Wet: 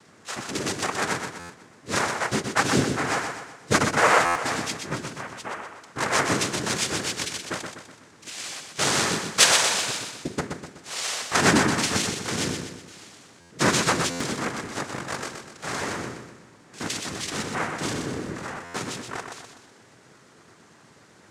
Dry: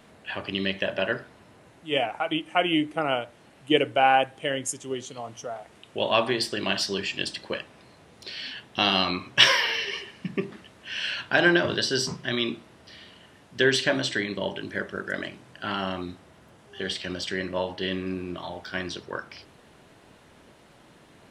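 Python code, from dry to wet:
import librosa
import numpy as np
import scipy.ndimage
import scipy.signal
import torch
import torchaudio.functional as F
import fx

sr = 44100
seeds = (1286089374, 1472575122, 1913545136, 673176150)

y = fx.noise_vocoder(x, sr, seeds[0], bands=3)
y = fx.echo_feedback(y, sr, ms=124, feedback_pct=46, wet_db=-6)
y = fx.buffer_glitch(y, sr, at_s=(1.39, 4.25, 13.4, 14.1, 18.64), block=512, repeats=8)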